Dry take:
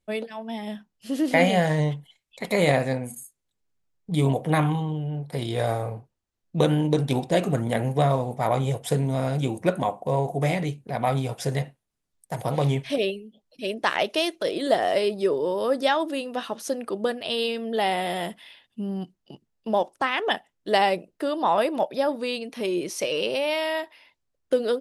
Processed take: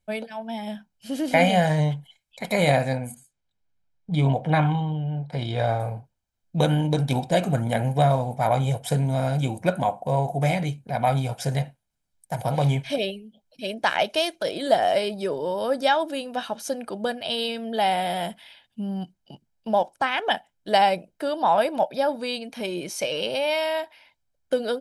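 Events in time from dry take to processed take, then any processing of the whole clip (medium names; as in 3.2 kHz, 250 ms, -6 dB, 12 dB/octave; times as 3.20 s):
3.14–5.80 s: low-pass 4.6 kHz
whole clip: comb 1.3 ms, depth 49%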